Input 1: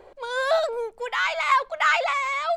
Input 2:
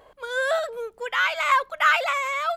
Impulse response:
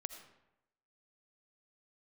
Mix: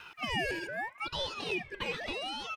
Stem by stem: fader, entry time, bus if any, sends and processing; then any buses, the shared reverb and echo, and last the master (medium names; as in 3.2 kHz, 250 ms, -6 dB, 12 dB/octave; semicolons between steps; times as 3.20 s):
-9.0 dB, 0.00 s, send -6.5 dB, compression, threshold -26 dBFS, peak gain reduction 10.5 dB
-5.5 dB, 1.5 ms, send -16 dB, three bands compressed up and down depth 40%; auto duck -15 dB, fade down 1.35 s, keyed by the first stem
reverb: on, RT60 0.90 s, pre-delay 40 ms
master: ring modulator with a swept carrier 1.5 kHz, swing 35%, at 0.82 Hz